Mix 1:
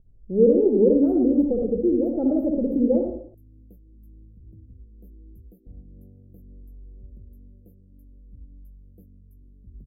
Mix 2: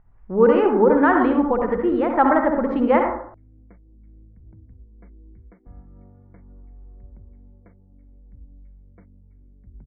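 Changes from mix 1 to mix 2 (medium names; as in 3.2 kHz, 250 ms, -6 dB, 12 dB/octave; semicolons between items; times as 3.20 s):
background: add brick-wall FIR low-pass 2.3 kHz; master: remove inverse Chebyshev band-stop 940–8300 Hz, stop band 40 dB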